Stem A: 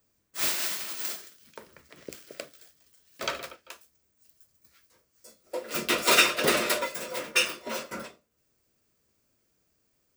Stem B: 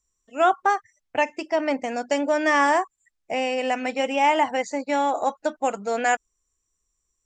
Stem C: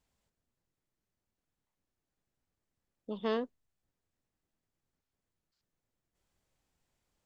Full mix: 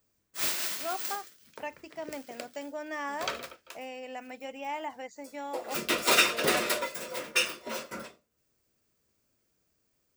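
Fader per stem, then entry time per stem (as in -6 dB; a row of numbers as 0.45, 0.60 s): -2.5, -16.5, -17.5 dB; 0.00, 0.45, 0.00 s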